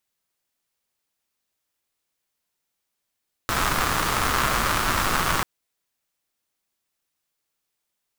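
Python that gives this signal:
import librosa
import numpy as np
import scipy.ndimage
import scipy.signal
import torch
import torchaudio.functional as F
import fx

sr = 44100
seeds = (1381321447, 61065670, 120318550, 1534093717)

y = fx.rain(sr, seeds[0], length_s=1.94, drops_per_s=220.0, hz=1200.0, bed_db=-1.0)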